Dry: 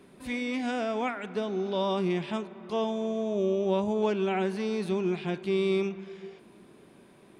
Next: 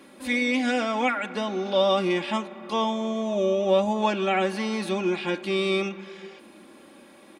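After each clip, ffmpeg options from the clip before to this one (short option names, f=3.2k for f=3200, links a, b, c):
-af "highpass=65,lowshelf=f=250:g=-10.5,aecho=1:1:3.6:0.73,volume=7dB"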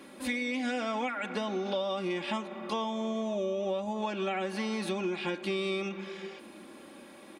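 -af "acompressor=threshold=-29dB:ratio=10"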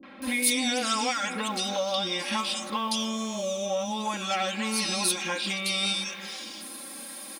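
-filter_complex "[0:a]crystalizer=i=8.5:c=0,aecho=1:1:3.8:0.63,acrossover=split=410|2700[a][b][c];[b]adelay=30[d];[c]adelay=220[e];[a][d][e]amix=inputs=3:normalize=0"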